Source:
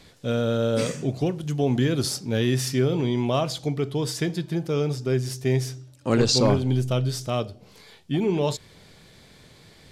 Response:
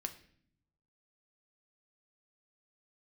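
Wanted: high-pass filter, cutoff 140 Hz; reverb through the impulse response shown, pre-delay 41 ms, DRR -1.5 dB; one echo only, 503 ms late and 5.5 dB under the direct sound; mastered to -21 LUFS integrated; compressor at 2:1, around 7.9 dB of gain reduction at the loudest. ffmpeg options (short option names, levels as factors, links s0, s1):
-filter_complex "[0:a]highpass=140,acompressor=threshold=0.0316:ratio=2,aecho=1:1:503:0.531,asplit=2[s0][s1];[1:a]atrim=start_sample=2205,adelay=41[s2];[s1][s2]afir=irnorm=-1:irlink=0,volume=1.41[s3];[s0][s3]amix=inputs=2:normalize=0,volume=1.88"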